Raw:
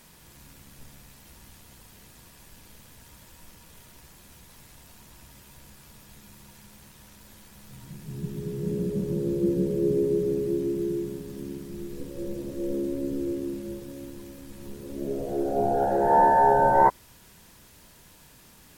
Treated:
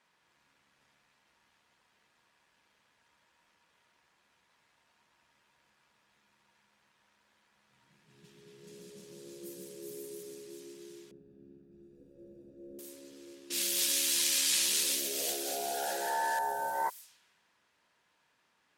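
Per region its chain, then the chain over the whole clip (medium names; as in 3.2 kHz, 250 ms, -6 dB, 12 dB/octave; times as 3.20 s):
11.11–12.79 s: boxcar filter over 42 samples + tilt EQ -3 dB/octave
13.50–16.39 s: frequency weighting D + level flattener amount 70%
whole clip: level-controlled noise filter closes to 1.4 kHz, open at -19.5 dBFS; differentiator; trim +4 dB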